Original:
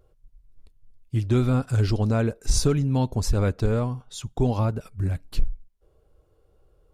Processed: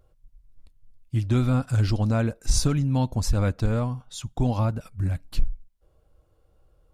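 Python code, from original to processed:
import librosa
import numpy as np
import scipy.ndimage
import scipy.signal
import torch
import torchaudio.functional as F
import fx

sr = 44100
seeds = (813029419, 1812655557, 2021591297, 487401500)

y = fx.peak_eq(x, sr, hz=410.0, db=-10.5, octaves=0.3)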